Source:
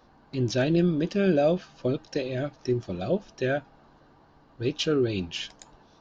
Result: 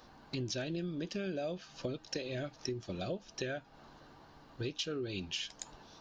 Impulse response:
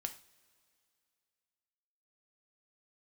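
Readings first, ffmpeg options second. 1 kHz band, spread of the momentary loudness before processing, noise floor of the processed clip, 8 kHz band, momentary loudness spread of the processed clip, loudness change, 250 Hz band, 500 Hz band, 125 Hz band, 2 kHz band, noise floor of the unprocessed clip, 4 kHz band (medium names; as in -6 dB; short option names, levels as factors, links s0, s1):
-12.0 dB, 9 LU, -60 dBFS, no reading, 20 LU, -12.5 dB, -13.5 dB, -13.5 dB, -13.0 dB, -9.0 dB, -58 dBFS, -5.5 dB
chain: -af "highshelf=f=2200:g=9,acompressor=threshold=0.0178:ratio=6,volume=0.891"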